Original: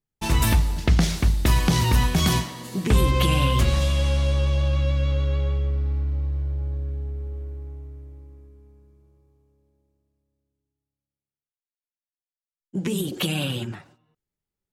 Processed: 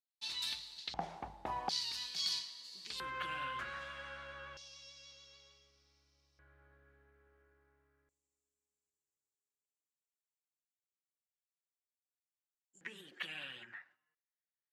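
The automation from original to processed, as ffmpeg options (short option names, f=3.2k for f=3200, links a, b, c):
-af "asetnsamples=n=441:p=0,asendcmd='0.94 bandpass f 800;1.69 bandpass f 4500;3 bandpass f 1500;4.57 bandpass f 5500;6.39 bandpass f 1600;8.09 bandpass f 7400;12.81 bandpass f 1800',bandpass=f=4.1k:t=q:w=6.2:csg=0"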